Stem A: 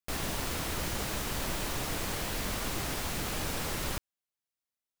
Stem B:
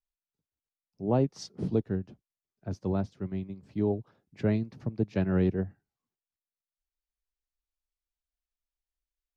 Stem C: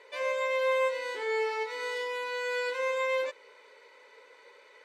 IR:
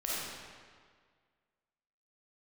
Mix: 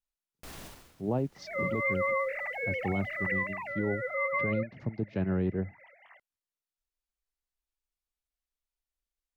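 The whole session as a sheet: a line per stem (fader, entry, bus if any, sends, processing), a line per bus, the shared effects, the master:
3.18 s -7 dB -> 3.73 s -14.5 dB, 0.35 s, no bus, no send, limiter -28 dBFS, peak gain reduction 7.5 dB; auto duck -20 dB, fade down 0.35 s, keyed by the second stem
-1.0 dB, 0.00 s, bus A, no send, dry
+1.5 dB, 1.35 s, bus A, no send, sine-wave speech; comb 1 ms, depth 47%
bus A: 0.0 dB, treble ducked by the level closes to 2900 Hz, closed at -27.5 dBFS; limiter -21 dBFS, peak gain reduction 9 dB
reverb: off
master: dry

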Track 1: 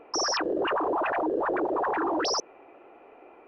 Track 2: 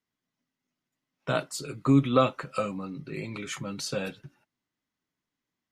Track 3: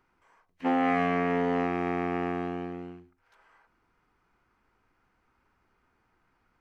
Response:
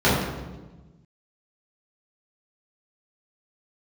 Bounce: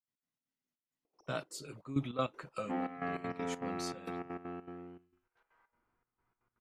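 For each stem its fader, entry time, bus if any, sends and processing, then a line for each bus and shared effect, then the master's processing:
-18.5 dB, 1.05 s, no send, LPF 3700 Hz; bell 1700 Hz -15 dB 1.8 oct; limiter -28.5 dBFS, peak gain reduction 6.5 dB; auto duck -9 dB, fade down 1.65 s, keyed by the second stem
-10.5 dB, 0.00 s, no send, high shelf 5400 Hz +7 dB
+2.0 dB, 2.05 s, no send, LPF 2300 Hz 6 dB/oct; resonator 120 Hz, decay 0.7 s, harmonics all, mix 80%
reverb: off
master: high shelf 6200 Hz -6.5 dB; step gate ".x.xx.xxxx..xx" 199 bpm -12 dB

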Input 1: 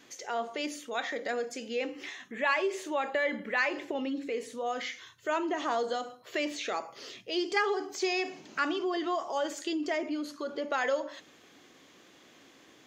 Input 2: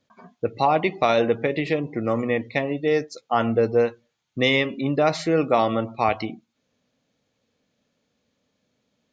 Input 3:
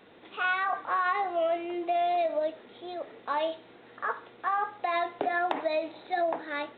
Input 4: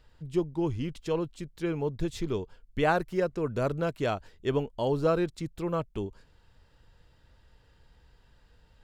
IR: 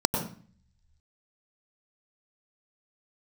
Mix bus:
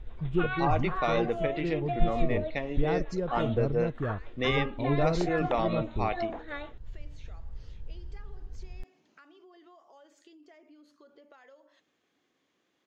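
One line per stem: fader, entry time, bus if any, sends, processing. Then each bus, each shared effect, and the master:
-17.5 dB, 0.60 s, no send, compressor 5:1, threshold -36 dBFS, peak gain reduction 12.5 dB; high shelf 6100 Hz -7.5 dB
-9.5 dB, 0.00 s, no send, dry
-3.0 dB, 0.00 s, no send, rotary speaker horn 6.7 Hz
-1.5 dB, 0.00 s, no send, tilt -4.5 dB/oct; short-mantissa float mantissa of 8-bit; auto duck -9 dB, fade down 0.55 s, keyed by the second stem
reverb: off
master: dry

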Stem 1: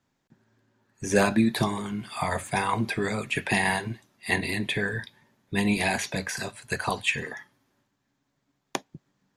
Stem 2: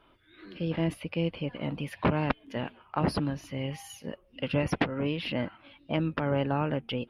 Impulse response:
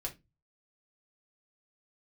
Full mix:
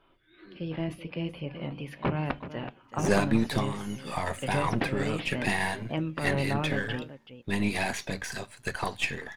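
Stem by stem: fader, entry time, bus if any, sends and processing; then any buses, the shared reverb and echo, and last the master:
-1.0 dB, 1.95 s, no send, no echo send, half-wave gain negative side -7 dB
-6.0 dB, 0.00 s, send -5 dB, echo send -9.5 dB, dry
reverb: on, RT60 0.20 s, pre-delay 3 ms
echo: echo 0.378 s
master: high shelf 7100 Hz -4 dB

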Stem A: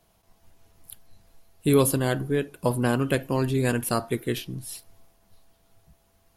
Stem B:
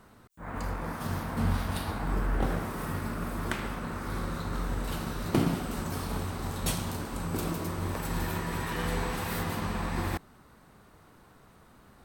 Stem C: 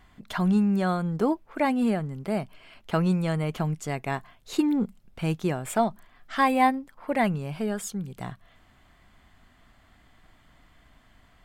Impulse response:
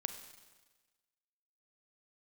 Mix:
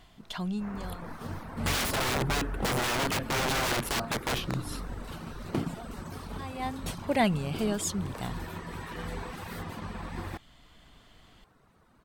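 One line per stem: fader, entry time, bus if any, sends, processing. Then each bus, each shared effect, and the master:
+2.5 dB, 0.00 s, no send, bell 11000 Hz -6 dB 1.2 oct; wrapped overs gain 25.5 dB
-4.5 dB, 0.20 s, no send, reverb removal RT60 0.68 s
-0.5 dB, 0.00 s, no send, resonant high shelf 2500 Hz +7 dB, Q 1.5; auto duck -23 dB, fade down 1.20 s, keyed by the first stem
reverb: off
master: high shelf 8400 Hz -8 dB

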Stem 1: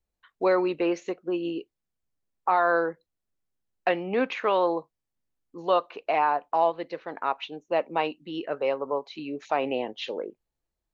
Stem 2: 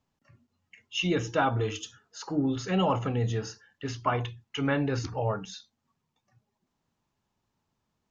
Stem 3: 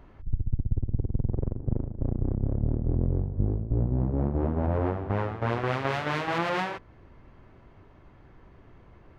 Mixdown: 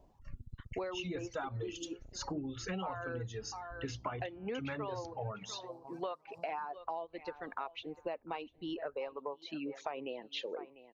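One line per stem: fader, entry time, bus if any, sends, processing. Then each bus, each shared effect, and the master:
-2.5 dB, 0.35 s, no send, echo send -16 dB, dry
+0.5 dB, 0.00 s, no send, no echo send, dry
-12.0 dB, 0.00 s, no send, no echo send, Chebyshev band-stop 960–4800 Hz, order 3; LFO bell 1.4 Hz 590–1600 Hz +10 dB; auto duck -8 dB, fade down 0.55 s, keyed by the second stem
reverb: off
echo: feedback echo 0.697 s, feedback 25%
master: reverb removal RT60 1.9 s; compressor 12:1, threshold -36 dBFS, peak gain reduction 18.5 dB

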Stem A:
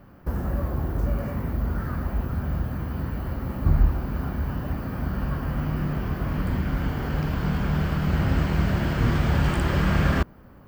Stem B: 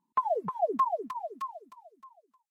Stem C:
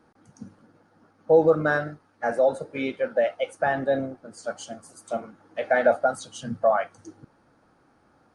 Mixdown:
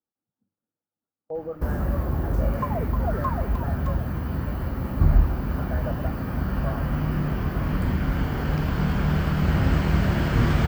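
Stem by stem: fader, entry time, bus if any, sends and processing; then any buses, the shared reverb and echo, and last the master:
+1.5 dB, 1.35 s, no send, dry
-3.0 dB, 2.45 s, no send, dry
-14.5 dB, 0.00 s, no send, running mean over 14 samples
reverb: off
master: gate with hold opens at -35 dBFS

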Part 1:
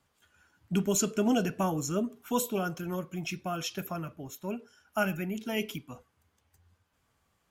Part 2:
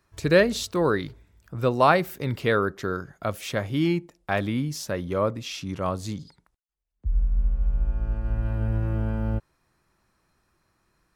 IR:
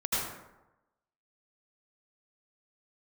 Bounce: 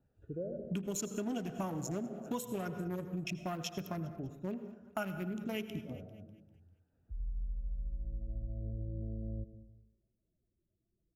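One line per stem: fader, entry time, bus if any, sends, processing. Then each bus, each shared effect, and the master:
+1.5 dB, 0.00 s, send -20.5 dB, echo send -20 dB, Wiener smoothing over 41 samples
-11.5 dB, 0.05 s, muted 3.32–5.44, send -20.5 dB, no echo send, steep low-pass 760 Hz 72 dB/oct; loudest bins only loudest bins 16; auto duck -18 dB, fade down 0.75 s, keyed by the first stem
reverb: on, RT60 1.0 s, pre-delay 73 ms
echo: feedback echo 0.198 s, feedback 42%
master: compressor 6:1, threshold -35 dBFS, peak gain reduction 14 dB

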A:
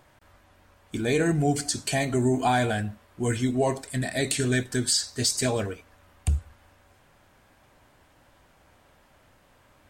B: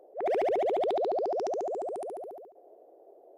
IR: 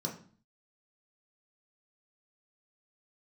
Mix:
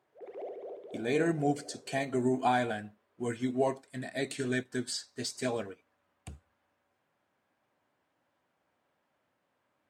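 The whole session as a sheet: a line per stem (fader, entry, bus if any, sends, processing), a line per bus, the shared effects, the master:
-3.0 dB, 0.00 s, no send, dry
-5.0 dB, 0.00 s, send -12 dB, stepped notch 8 Hz 520–1700 Hz; auto duck -16 dB, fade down 1.20 s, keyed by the first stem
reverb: on, RT60 0.45 s, pre-delay 3 ms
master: HPF 180 Hz 12 dB/oct; high shelf 4800 Hz -10 dB; upward expander 1.5:1, over -50 dBFS

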